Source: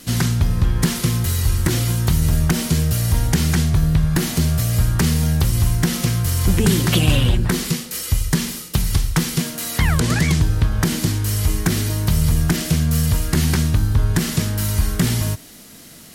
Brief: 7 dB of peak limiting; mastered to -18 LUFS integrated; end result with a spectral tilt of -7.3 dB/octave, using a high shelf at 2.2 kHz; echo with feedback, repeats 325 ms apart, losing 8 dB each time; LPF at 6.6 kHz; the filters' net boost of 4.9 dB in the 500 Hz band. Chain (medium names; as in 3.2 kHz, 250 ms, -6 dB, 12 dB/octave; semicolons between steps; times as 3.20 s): low-pass 6.6 kHz; peaking EQ 500 Hz +7 dB; treble shelf 2.2 kHz -8.5 dB; peak limiter -10 dBFS; feedback delay 325 ms, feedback 40%, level -8 dB; trim +2 dB